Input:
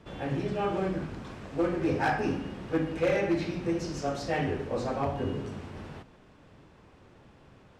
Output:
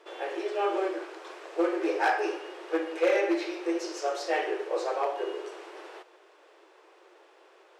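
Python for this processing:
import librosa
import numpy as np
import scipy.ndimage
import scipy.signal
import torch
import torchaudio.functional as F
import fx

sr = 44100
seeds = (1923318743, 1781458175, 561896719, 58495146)

y = fx.brickwall_highpass(x, sr, low_hz=320.0)
y = y * librosa.db_to_amplitude(2.5)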